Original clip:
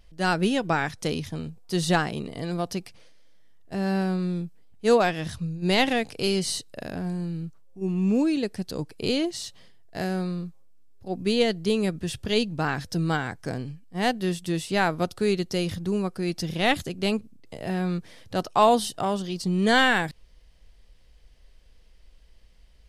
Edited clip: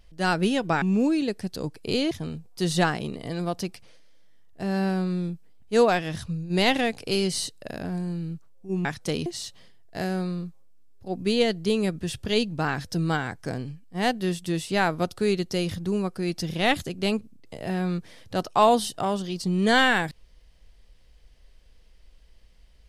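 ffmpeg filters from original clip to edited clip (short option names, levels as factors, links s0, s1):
-filter_complex "[0:a]asplit=5[s0][s1][s2][s3][s4];[s0]atrim=end=0.822[s5];[s1]atrim=start=7.968:end=9.262[s6];[s2]atrim=start=1.228:end=7.972[s7];[s3]atrim=start=0.818:end=1.232[s8];[s4]atrim=start=9.258[s9];[s5][s6]acrossfade=d=0.004:c1=hsin:c2=hsin[s10];[s10][s7]acrossfade=d=0.004:c1=hsin:c2=hsin[s11];[s11][s8]acrossfade=d=0.004:c1=hsin:c2=hsin[s12];[s12][s9]acrossfade=d=0.004:c1=hsin:c2=hsin"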